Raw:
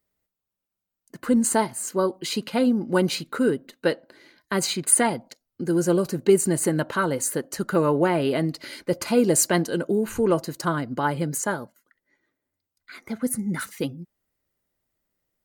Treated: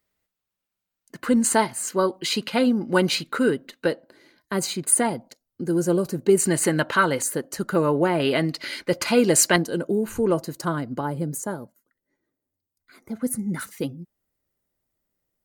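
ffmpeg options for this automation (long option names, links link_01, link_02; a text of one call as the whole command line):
ffmpeg -i in.wav -af "asetnsamples=nb_out_samples=441:pad=0,asendcmd='3.86 equalizer g -4;6.37 equalizer g 8;7.22 equalizer g -0.5;8.2 equalizer g 7.5;9.56 equalizer g -3.5;11.01 equalizer g -12.5;13.15 equalizer g -3.5',equalizer=frequency=2500:width_type=o:width=2.7:gain=5.5" out.wav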